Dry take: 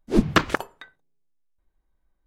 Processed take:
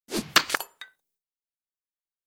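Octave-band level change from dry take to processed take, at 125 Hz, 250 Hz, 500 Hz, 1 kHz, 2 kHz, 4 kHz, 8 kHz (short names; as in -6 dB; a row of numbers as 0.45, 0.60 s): -16.0, -12.5, -8.5, -2.5, +0.5, +6.0, +9.0 dB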